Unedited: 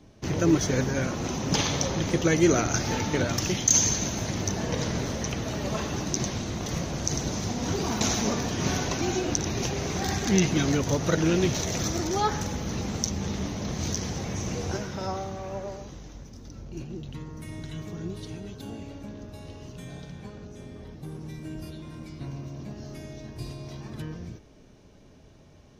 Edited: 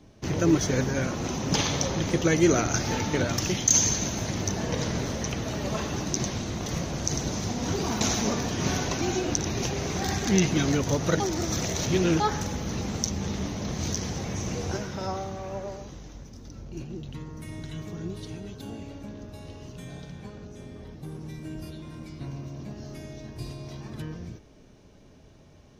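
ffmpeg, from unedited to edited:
-filter_complex "[0:a]asplit=3[a][b][c];[a]atrim=end=11.202[d];[b]atrim=start=11.198:end=12.202,asetpts=PTS-STARTPTS,areverse[e];[c]atrim=start=12.198[f];[d][e]acrossfade=d=0.004:c1=hsin:c2=hsin[g];[g][f]acrossfade=d=0.004:c1=hsin:c2=hsin"

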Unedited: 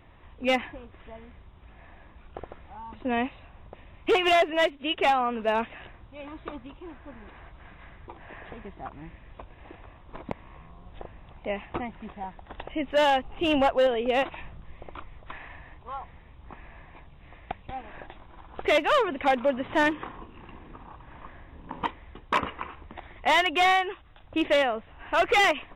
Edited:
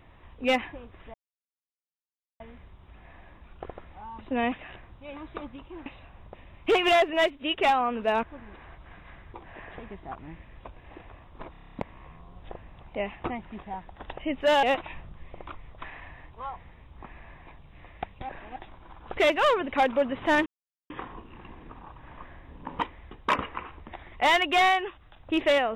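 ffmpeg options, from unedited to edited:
-filter_complex "[0:a]asplit=17[a][b][c][d][e][f][g][h][i][j][k][l][m][n][o][p][q];[a]atrim=end=1.14,asetpts=PTS-STARTPTS,afade=t=out:st=1.136:d=0.004:c=hsin,apad=pad_dur=1.26[r];[b]atrim=start=1.14:end=3.262,asetpts=PTS-STARTPTS,afade=t=in:d=0.004:c=hsin[s];[c]atrim=start=5.628:end=6.972[t];[d]atrim=start=3.258:end=5.632[u];[e]atrim=start=6.968:end=10.282[v];[f]atrim=start=10.248:end=10.282[w];[g]atrim=start=10.248:end=10.282[x];[h]atrim=start=10.248:end=10.282[y];[i]atrim=start=10.248:end=10.282[z];[j]atrim=start=10.248:end=10.282[aa];[k]atrim=start=10.248:end=10.282[ab];[l]atrim=start=10.248:end=10.282[ac];[m]atrim=start=10.248:end=13.132[ad];[n]atrim=start=14.108:end=17.772[ae];[o]atrim=start=17.768:end=18.042,asetpts=PTS-STARTPTS,areverse[af];[p]atrim=start=18.038:end=19.94,asetpts=PTS-STARTPTS,afade=t=out:st=1.898:d=0.004:c=hsin,apad=pad_dur=0.44[ag];[q]atrim=start=19.94,asetpts=PTS-STARTPTS,afade=t=in:d=0.004:c=hsin[ah];[r][s]concat=n=2:v=0:a=1[ai];[ai][t]acrossfade=d=0.004:c1=hsin:c2=hsin[aj];[aj][u]acrossfade=d=0.004:c1=hsin:c2=hsin[ak];[ak][v]acrossfade=d=0.004:c1=hsin:c2=hsin[al];[al][w]acrossfade=d=0.004:c1=hsin:c2=hsin[am];[am][x]acrossfade=d=0.004:c1=hsin:c2=hsin[an];[an][y]acrossfade=d=0.004:c1=hsin:c2=hsin[ao];[ao][z]acrossfade=d=0.004:c1=hsin:c2=hsin[ap];[ap][aa]acrossfade=d=0.004:c1=hsin:c2=hsin[aq];[aq][ab]acrossfade=d=0.004:c1=hsin:c2=hsin[ar];[ar][ac]acrossfade=d=0.004:c1=hsin:c2=hsin[as];[as][ad]acrossfade=d=0.004:c1=hsin:c2=hsin[at];[at][ae]acrossfade=d=0.004:c1=hsin:c2=hsin[au];[au][af]acrossfade=d=0.004:c1=hsin:c2=hsin[av];[ag][ah]concat=n=2:v=0:a=1[aw];[av][aw]acrossfade=d=0.004:c1=hsin:c2=hsin"

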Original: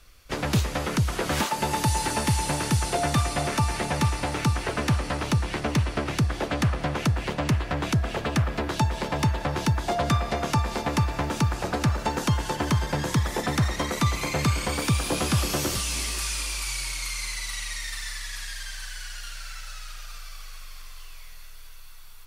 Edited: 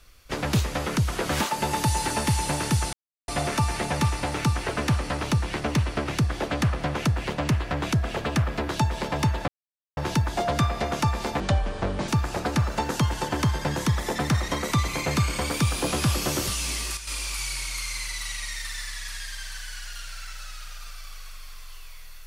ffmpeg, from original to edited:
-filter_complex "[0:a]asplit=8[a][b][c][d][e][f][g][h];[a]atrim=end=2.93,asetpts=PTS-STARTPTS,afade=t=out:st=2.926:d=0.004:c=hsin[i];[b]atrim=start=2.93:end=3.28,asetpts=PTS-STARTPTS,volume=0[j];[c]atrim=start=3.28:end=9.48,asetpts=PTS-STARTPTS,afade=t=in:d=0.004:c=hsin,afade=t=out:st=6.196:d=0.004:c=hsin,apad=pad_dur=0.49[k];[d]atrim=start=9.48:end=10.914,asetpts=PTS-STARTPTS,afade=t=in:d=0.004:c=hsin[l];[e]atrim=start=10.91:end=11.36,asetpts=PTS-STARTPTS,asetrate=29106,aresample=44100,atrim=end_sample=30068,asetpts=PTS-STARTPTS[m];[f]atrim=start=11.356:end=16.25,asetpts=PTS-STARTPTS,afade=t=out:st=4.474:d=0.42:c=log:silence=0.334965[n];[g]atrim=start=16.25:end=16.35,asetpts=PTS-STARTPTS,volume=-9.5dB[o];[h]atrim=start=16.35,asetpts=PTS-STARTPTS,afade=t=in:d=0.42:c=log:silence=0.334965[p];[i][j][k][l]concat=n=4:v=0:a=1[q];[q][m]acrossfade=d=0.004:c1=hsin:c2=hsin[r];[n][o][p]concat=n=3:v=0:a=1[s];[r][s]acrossfade=d=0.004:c1=hsin:c2=hsin"

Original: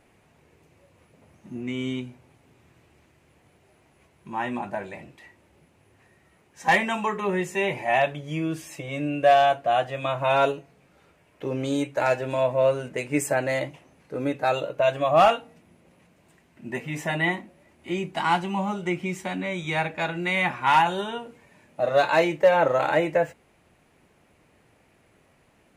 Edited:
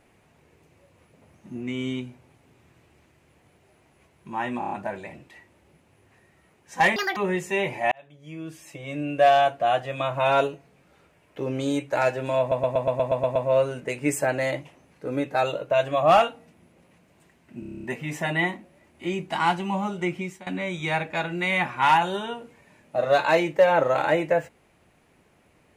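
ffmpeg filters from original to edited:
-filter_complex "[0:a]asplit=25[a][b][c][d][e][f][g][h][i][j][k][l][m][n][o][p][q][r][s][t][u][v][w][x][y];[a]atrim=end=4.622[z];[b]atrim=start=4.588:end=4.622[aa];[c]atrim=start=4.588:end=4.622[ab];[d]atrim=start=4.588:end=4.622[ac];[e]atrim=start=4.588:end=6.844[ad];[f]atrim=start=6.84:end=7.21,asetpts=PTS-STARTPTS,asetrate=79380,aresample=44100[ae];[g]atrim=start=7.206:end=7.96,asetpts=PTS-STARTPTS,afade=t=out:st=0.75:d=0.004:c=hsin[af];[h]atrim=start=7.96:end=12.562,asetpts=PTS-STARTPTS,afade=t=in:d=1.38[ag];[i]atrim=start=12.438:end=12.562[ah];[j]atrim=start=12.438:end=12.562[ai];[k]atrim=start=12.438:end=12.562[aj];[l]atrim=start=12.438:end=12.562[ak];[m]atrim=start=12.438:end=12.562[al];[n]atrim=start=12.438:end=12.562[am];[o]atrim=start=12.438:end=12.562[an];[p]atrim=start=12.438:end=16.712[ao];[q]atrim=start=16.678:end=16.712[ap];[r]atrim=start=16.678:end=16.712[aq];[s]atrim=start=16.678:end=16.712[ar];[t]atrim=start=16.678:end=16.712[as];[u]atrim=start=16.678:end=16.712[at];[v]atrim=start=16.678:end=16.712[au];[w]atrim=start=16.678:end=16.712[av];[x]atrim=start=16.678:end=19.31,asetpts=PTS-STARTPTS,afade=t=out:st=2.312:d=0.32:silence=0.11885[aw];[y]atrim=start=19.31,asetpts=PTS-STARTPTS,afade=t=in:d=0.004:c=hsin:silence=0.11885[ax];[z][aa]acrossfade=d=0.004:c1=hsin:c2=hsin[ay];[ay][ab]acrossfade=d=0.004:c1=hsin:c2=hsin[az];[az][ac]acrossfade=d=0.004:c1=hsin:c2=hsin[ba];[ba][ad]acrossfade=d=0.004:c1=hsin:c2=hsin[bb];[bb][ae]acrossfade=d=0.004:c1=hsin:c2=hsin[bc];[af][ag]concat=n=2:v=0:a=1[bd];[bc][bd]acrossfade=d=0.004:c1=hsin:c2=hsin[be];[be][ah]acrossfade=d=0.004:c1=hsin:c2=hsin[bf];[bf][ai]acrossfade=d=0.004:c1=hsin:c2=hsin[bg];[bg][aj]acrossfade=d=0.004:c1=hsin:c2=hsin[bh];[bh][ak]acrossfade=d=0.004:c1=hsin:c2=hsin[bi];[bi][al]acrossfade=d=0.004:c1=hsin:c2=hsin[bj];[bj][am]acrossfade=d=0.004:c1=hsin:c2=hsin[bk];[bk][an]acrossfade=d=0.004:c1=hsin:c2=hsin[bl];[bl][ao]acrossfade=d=0.004:c1=hsin:c2=hsin[bm];[bm][ap]acrossfade=d=0.004:c1=hsin:c2=hsin[bn];[bn][aq]acrossfade=d=0.004:c1=hsin:c2=hsin[bo];[bo][ar]acrossfade=d=0.004:c1=hsin:c2=hsin[bp];[bp][as]acrossfade=d=0.004:c1=hsin:c2=hsin[bq];[bq][at]acrossfade=d=0.004:c1=hsin:c2=hsin[br];[br][au]acrossfade=d=0.004:c1=hsin:c2=hsin[bs];[bs][av]acrossfade=d=0.004:c1=hsin:c2=hsin[bt];[aw][ax]concat=n=2:v=0:a=1[bu];[bt][bu]acrossfade=d=0.004:c1=hsin:c2=hsin"

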